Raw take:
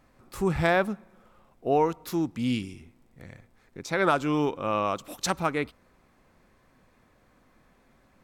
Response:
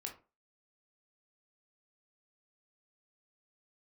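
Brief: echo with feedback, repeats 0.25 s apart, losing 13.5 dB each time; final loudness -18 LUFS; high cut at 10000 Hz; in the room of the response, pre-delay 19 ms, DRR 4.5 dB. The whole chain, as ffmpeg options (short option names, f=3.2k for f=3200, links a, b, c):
-filter_complex "[0:a]lowpass=10k,aecho=1:1:250|500:0.211|0.0444,asplit=2[a][b];[1:a]atrim=start_sample=2205,adelay=19[c];[b][c]afir=irnorm=-1:irlink=0,volume=-2dB[d];[a][d]amix=inputs=2:normalize=0,volume=8.5dB"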